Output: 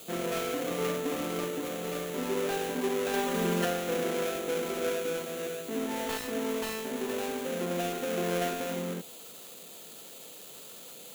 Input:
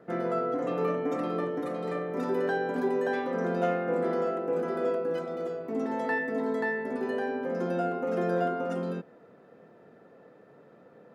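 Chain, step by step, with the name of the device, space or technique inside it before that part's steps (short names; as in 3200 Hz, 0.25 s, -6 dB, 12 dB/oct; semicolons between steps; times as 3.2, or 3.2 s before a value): budget class-D amplifier (switching dead time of 0.27 ms; switching spikes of -26.5 dBFS); 3.13–3.65 comb 5 ms, depth 99%; gain -2 dB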